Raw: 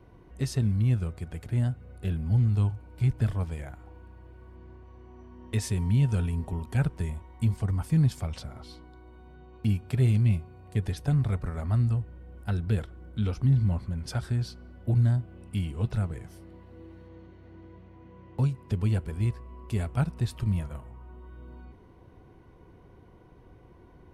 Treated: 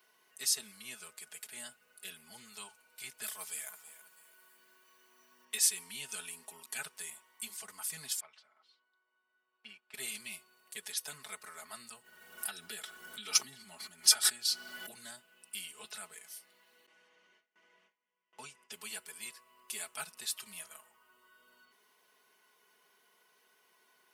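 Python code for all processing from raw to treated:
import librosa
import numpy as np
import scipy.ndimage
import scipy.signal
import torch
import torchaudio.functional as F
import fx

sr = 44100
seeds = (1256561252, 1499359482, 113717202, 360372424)

y = fx.chain(x, sr, fx.high_shelf(hz=7700.0, db=12.0),
    fx.echo_feedback(ms=324, feedback_pct=33, wet_db=-14.0), at=(3.23, 5.45))
y = fx.chain(y, sr, fx.lowpass(hz=2100.0, slope=12),
    fx.low_shelf(hz=400.0, db=-10.5),
    fx.upward_expand(threshold_db=-53.0, expansion=1.5), at=(8.2, 9.94))
y = fx.chain(y, sr, fx.notch_comb(f0_hz=520.0),
    fx.pre_swell(db_per_s=26.0), at=(12.01, 14.9))
y = fx.chain(y, sr, fx.gate_hold(open_db=-40.0, close_db=-44.0, hold_ms=71.0, range_db=-21, attack_ms=1.4, release_ms=100.0),
    fx.lowpass(hz=6900.0, slope=12),
    fx.peak_eq(hz=4100.0, db=-10.5, octaves=0.25), at=(16.86, 18.72))
y = fx.highpass(y, sr, hz=750.0, slope=6)
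y = np.diff(y, prepend=0.0)
y = y + 0.8 * np.pad(y, (int(4.7 * sr / 1000.0), 0))[:len(y)]
y = y * librosa.db_to_amplitude(9.0)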